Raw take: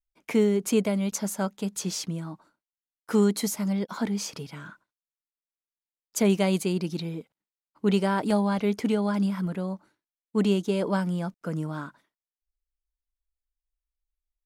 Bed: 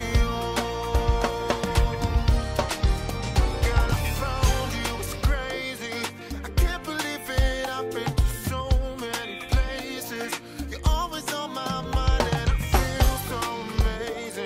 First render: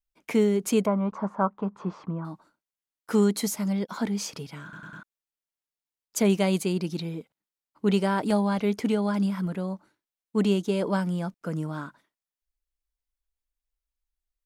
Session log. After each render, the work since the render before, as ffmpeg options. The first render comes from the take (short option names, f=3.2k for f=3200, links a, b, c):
-filter_complex "[0:a]asettb=1/sr,asplit=3[a][b][c];[a]atrim=end=0.864[d];[b]atrim=start=0.86:end=2.25,asetpts=PTS-STARTPTS,afade=t=in:d=0.004:c=qsin,afade=t=out:st=1.386:d=0.004:c=qsin,lowpass=f=1.1k:t=q:w=5.2[e];[c]atrim=start=2.246[f];[d][e]acrossfade=d=0.004:c1=hsin:c2=qsin[g];[g][f]acrossfade=d=0.004:c1=qsin:c2=hsin,asplit=5[h][i][j][k][l];[h]atrim=end=4.732[m];[i]atrim=start=4.628:end=4.732[n];[j]atrim=start=4.628:end=4.732[o];[k]atrim=start=4.628:end=4.732[p];[l]atrim=start=5.028[q];[m][n]acrossfade=d=0.004:c1=hsin:c2=hsin[r];[r][o]acrossfade=d=0.004:c1=hsin:c2=hsin[s];[s][p]acrossfade=d=0.004:c1=hsin:c2=hsin[t];[t][q]acrossfade=d=0.004:c1=hsin:c2=hsin"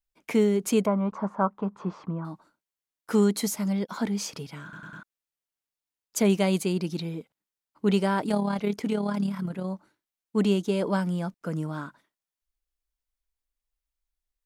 -filter_complex "[0:a]asettb=1/sr,asplit=3[a][b][c];[a]atrim=end=8.234[d];[b]atrim=start=8.23:end=9.65,asetpts=PTS-STARTPTS,afade=t=in:d=0.004:c=qsin,afade=t=out:st=1.416:d=0.004:c=qsin,tremolo=f=36:d=0.519[e];[c]atrim=start=9.646[f];[d][e]acrossfade=d=0.004:c1=hsin:c2=qsin[g];[g][f]acrossfade=d=0.004:c1=qsin:c2=hsin"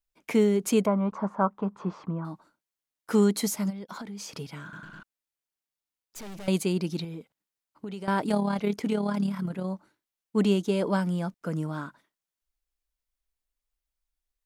-filter_complex "[0:a]asplit=3[a][b][c];[a]afade=t=out:st=3.69:d=0.02[d];[b]acompressor=threshold=-35dB:ratio=10:attack=3.2:release=140:knee=1:detection=peak,afade=t=in:st=3.69:d=0.02,afade=t=out:st=4.34:d=0.02[e];[c]afade=t=in:st=4.34:d=0.02[f];[d][e][f]amix=inputs=3:normalize=0,asettb=1/sr,asplit=3[g][h][i];[g]atrim=end=4.844[j];[h]atrim=start=4.84:end=6.48,asetpts=PTS-STARTPTS,afade=t=in:d=0.004:c=qsin,afade=t=out:st=1.636:d=0.004:c=qsin,aeval=exprs='(tanh(100*val(0)+0.4)-tanh(0.4))/100':c=same[k];[i]atrim=start=6.476[l];[j][k]acrossfade=d=0.004:c1=hsin:c2=qsin[m];[m][l]acrossfade=d=0.004:c1=qsin:c2=hsin,asettb=1/sr,asplit=3[n][o][p];[n]atrim=end=7.044[q];[o]atrim=start=7.04:end=8.08,asetpts=PTS-STARTPTS,afade=t=in:d=0.004:c=qsin,afade=t=out:st=1.036:d=0.004:c=qsin,acompressor=threshold=-34dB:ratio=6:attack=3.2:release=140:knee=1:detection=peak[r];[p]atrim=start=8.076[s];[q][r]acrossfade=d=0.004:c1=hsin:c2=qsin[t];[t][s]acrossfade=d=0.004:c1=qsin:c2=hsin"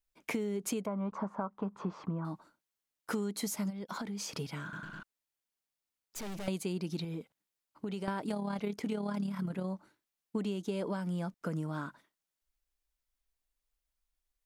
-af "alimiter=limit=-16.5dB:level=0:latency=1:release=266,acompressor=threshold=-32dB:ratio=6"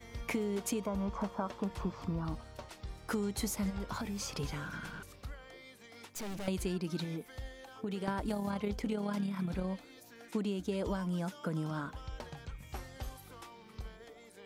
-filter_complex "[1:a]volume=-22.5dB[a];[0:a][a]amix=inputs=2:normalize=0"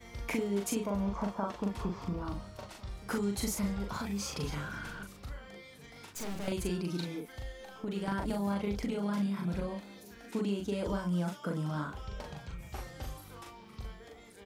-filter_complex "[0:a]asplit=2[a][b];[b]adelay=40,volume=-3dB[c];[a][c]amix=inputs=2:normalize=0,asplit=2[d][e];[e]adelay=1399,volume=-21dB,highshelf=f=4k:g=-31.5[f];[d][f]amix=inputs=2:normalize=0"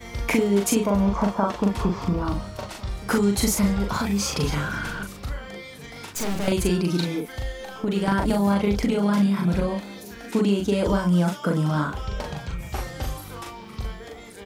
-af "volume=12dB"